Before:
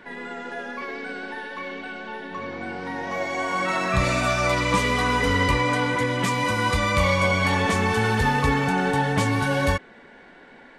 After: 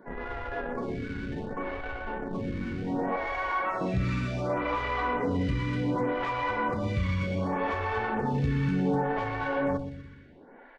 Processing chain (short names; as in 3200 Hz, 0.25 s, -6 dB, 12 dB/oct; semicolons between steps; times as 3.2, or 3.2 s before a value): 3.16–3.81 HPF 910 Hz 12 dB/oct; compressor, threshold -23 dBFS, peak gain reduction 7.5 dB; in parallel at -4 dB: Schmitt trigger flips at -29.5 dBFS; on the sum: tape spacing loss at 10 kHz 28 dB; feedback echo 0.123 s, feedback 53%, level -11 dB; photocell phaser 0.67 Hz